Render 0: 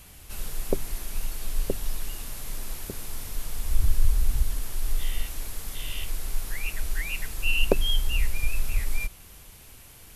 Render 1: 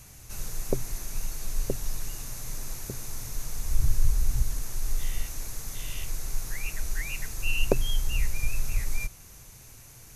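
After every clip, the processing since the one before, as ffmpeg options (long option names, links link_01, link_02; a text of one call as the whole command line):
ffmpeg -i in.wav -af "equalizer=frequency=125:width_type=o:width=0.33:gain=11,equalizer=frequency=3150:width_type=o:width=0.33:gain=-7,equalizer=frequency=6300:width_type=o:width=0.33:gain=10,volume=-2dB" out.wav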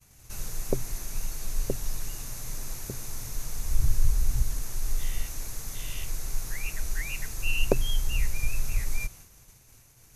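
ffmpeg -i in.wav -af "agate=range=-33dB:threshold=-42dB:ratio=3:detection=peak" out.wav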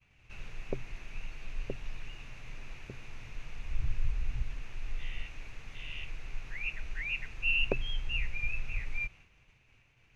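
ffmpeg -i in.wav -af "lowpass=frequency=2600:width_type=q:width=4.4,volume=-8.5dB" out.wav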